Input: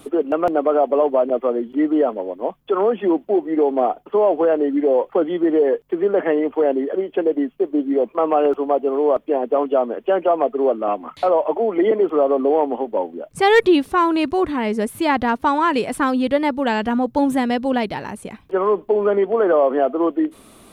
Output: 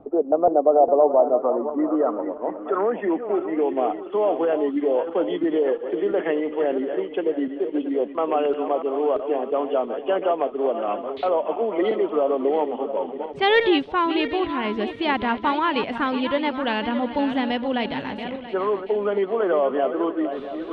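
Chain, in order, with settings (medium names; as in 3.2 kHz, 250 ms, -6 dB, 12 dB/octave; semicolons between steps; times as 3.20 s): backward echo that repeats 340 ms, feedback 56%, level -9.5 dB; low-pass 5.7 kHz 12 dB/octave; reverse; upward compressor, threshold -20 dBFS; reverse; low-pass sweep 700 Hz -> 3.3 kHz, 0.82–4.11 s; trim -5.5 dB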